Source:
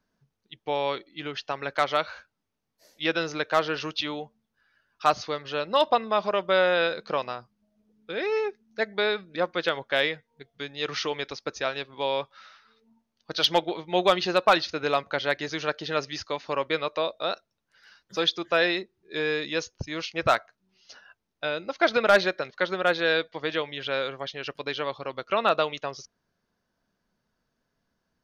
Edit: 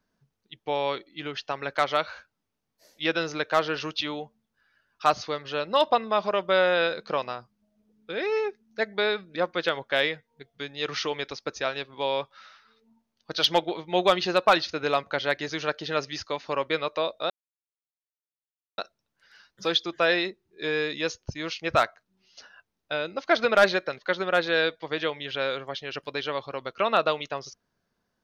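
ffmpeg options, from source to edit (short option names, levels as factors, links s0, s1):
-filter_complex "[0:a]asplit=2[s0][s1];[s0]atrim=end=17.3,asetpts=PTS-STARTPTS,afade=t=out:st=17.296:d=0.004:c=hsin,apad=pad_dur=1.48[s2];[s1]atrim=start=17.3,asetpts=PTS-STARTPTS,afade=t=in:d=0.004:c=hsin[s3];[s2][s3]concat=n=2:v=0:a=1"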